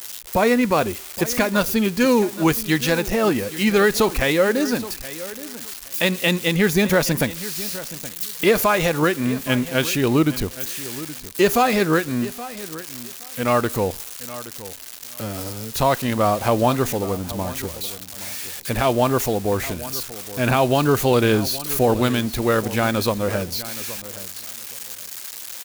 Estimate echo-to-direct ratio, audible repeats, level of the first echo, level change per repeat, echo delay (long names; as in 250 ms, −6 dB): −16.0 dB, 2, −16.0 dB, −14.5 dB, 822 ms